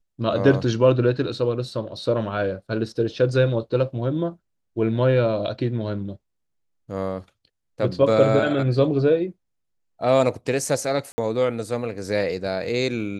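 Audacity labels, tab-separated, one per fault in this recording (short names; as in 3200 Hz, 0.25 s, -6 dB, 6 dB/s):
11.120000	11.180000	gap 60 ms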